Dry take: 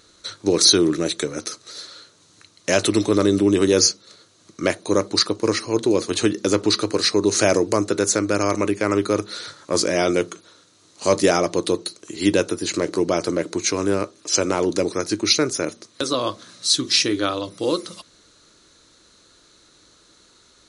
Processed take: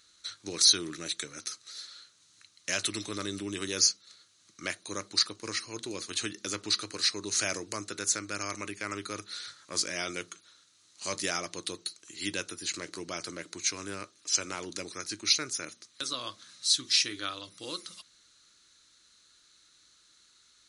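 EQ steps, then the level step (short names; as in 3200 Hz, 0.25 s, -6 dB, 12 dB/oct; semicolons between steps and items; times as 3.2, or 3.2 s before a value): resonant low shelf 680 Hz -10.5 dB, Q 1.5; bell 930 Hz -12.5 dB 1.1 oct; -6.5 dB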